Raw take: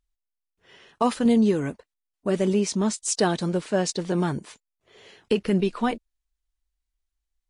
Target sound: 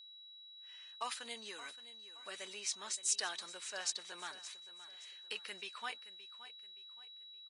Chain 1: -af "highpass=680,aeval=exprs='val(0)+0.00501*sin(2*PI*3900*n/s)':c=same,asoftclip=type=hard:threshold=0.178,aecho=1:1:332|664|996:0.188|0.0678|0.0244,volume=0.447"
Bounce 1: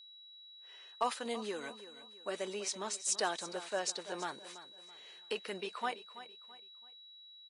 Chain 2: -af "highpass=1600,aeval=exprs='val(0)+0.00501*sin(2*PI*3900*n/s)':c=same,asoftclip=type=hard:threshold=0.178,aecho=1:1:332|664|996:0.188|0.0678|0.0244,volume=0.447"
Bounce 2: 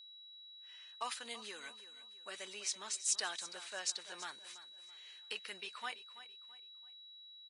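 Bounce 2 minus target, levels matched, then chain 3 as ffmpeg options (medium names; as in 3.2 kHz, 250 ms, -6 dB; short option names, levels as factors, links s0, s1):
echo 239 ms early
-af "highpass=1600,aeval=exprs='val(0)+0.00501*sin(2*PI*3900*n/s)':c=same,asoftclip=type=hard:threshold=0.178,aecho=1:1:571|1142|1713:0.188|0.0678|0.0244,volume=0.447"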